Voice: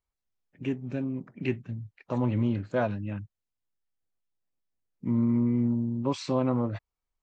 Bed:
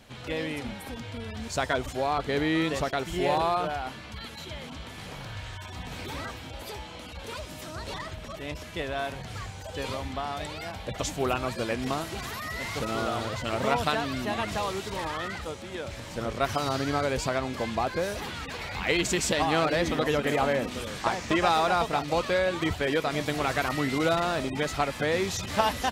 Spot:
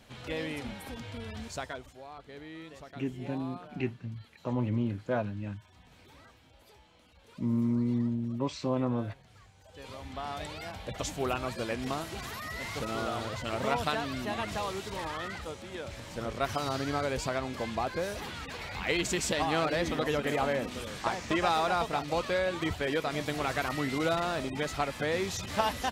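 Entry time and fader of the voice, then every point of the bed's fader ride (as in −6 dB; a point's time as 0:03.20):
2.35 s, −3.5 dB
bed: 0:01.38 −3.5 dB
0:01.98 −19.5 dB
0:09.54 −19.5 dB
0:10.28 −4 dB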